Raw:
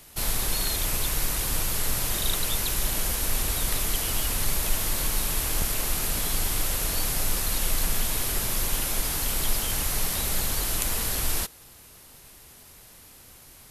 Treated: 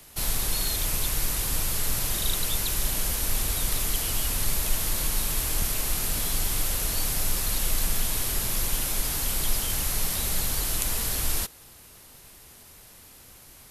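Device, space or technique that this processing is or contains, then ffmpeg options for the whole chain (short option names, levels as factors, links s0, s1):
one-band saturation: -filter_complex "[0:a]acrossover=split=210|3000[s0][s1][s2];[s1]asoftclip=type=tanh:threshold=0.02[s3];[s0][s3][s2]amix=inputs=3:normalize=0"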